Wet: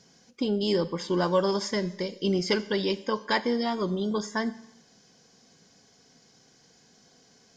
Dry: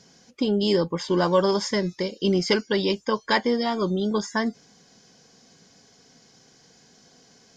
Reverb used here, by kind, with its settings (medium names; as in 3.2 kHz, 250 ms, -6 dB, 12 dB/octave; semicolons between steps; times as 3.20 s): Schroeder reverb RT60 0.83 s, combs from 30 ms, DRR 15.5 dB; trim -4 dB